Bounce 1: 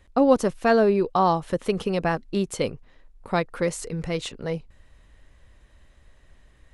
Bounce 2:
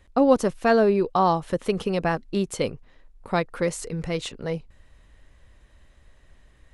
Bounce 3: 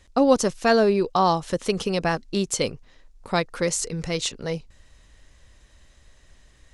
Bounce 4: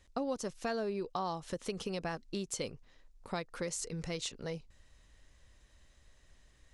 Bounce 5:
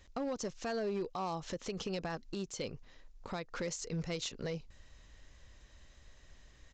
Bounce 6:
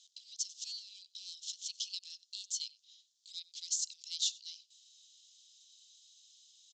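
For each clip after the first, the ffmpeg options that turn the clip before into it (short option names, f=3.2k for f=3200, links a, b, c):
-af anull
-af "equalizer=f=6k:t=o:w=1.5:g=11.5"
-af "acompressor=threshold=-26dB:ratio=3,volume=-9dB"
-af "alimiter=level_in=8dB:limit=-24dB:level=0:latency=1:release=168,volume=-8dB,aresample=16000,volume=35.5dB,asoftclip=hard,volume=-35.5dB,aresample=44100,volume=4.5dB"
-filter_complex "[0:a]asuperpass=centerf=5700:order=12:qfactor=0.93,asplit=2[a][b];[b]adelay=93.29,volume=-21dB,highshelf=f=4k:g=-2.1[c];[a][c]amix=inputs=2:normalize=0,volume=8.5dB"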